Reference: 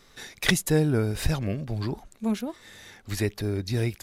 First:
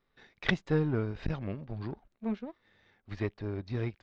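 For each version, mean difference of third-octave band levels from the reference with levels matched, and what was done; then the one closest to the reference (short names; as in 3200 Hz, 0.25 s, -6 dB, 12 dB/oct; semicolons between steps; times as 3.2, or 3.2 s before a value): 8.0 dB: power-law curve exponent 1.4; Gaussian blur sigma 2.4 samples; core saturation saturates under 280 Hz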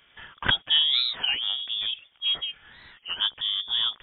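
16.5 dB: HPF 79 Hz; inverted band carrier 3500 Hz; record warp 33 1/3 rpm, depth 250 cents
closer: first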